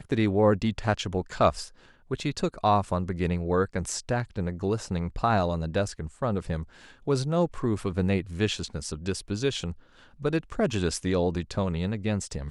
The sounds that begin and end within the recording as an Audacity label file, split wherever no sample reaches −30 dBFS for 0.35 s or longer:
2.110000	6.630000	sound
7.080000	9.720000	sound